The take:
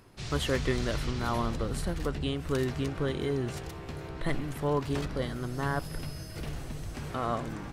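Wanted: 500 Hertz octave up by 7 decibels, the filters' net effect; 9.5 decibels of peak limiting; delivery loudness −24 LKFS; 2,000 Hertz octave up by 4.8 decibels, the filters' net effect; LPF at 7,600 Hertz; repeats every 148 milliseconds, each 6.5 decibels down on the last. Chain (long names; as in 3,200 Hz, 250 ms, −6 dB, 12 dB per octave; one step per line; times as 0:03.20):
low-pass filter 7,600 Hz
parametric band 500 Hz +8.5 dB
parametric band 2,000 Hz +5.5 dB
brickwall limiter −19.5 dBFS
repeating echo 148 ms, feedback 47%, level −6.5 dB
level +6 dB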